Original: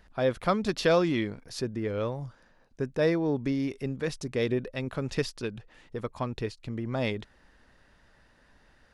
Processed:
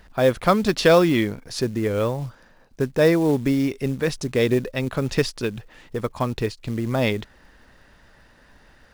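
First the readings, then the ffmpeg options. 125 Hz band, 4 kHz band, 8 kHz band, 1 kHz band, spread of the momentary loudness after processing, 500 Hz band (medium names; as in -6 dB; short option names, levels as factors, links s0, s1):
+8.0 dB, +8.0 dB, +9.5 dB, +8.0 dB, 13 LU, +8.0 dB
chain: -af "acrusher=bits=6:mode=log:mix=0:aa=0.000001,volume=2.51"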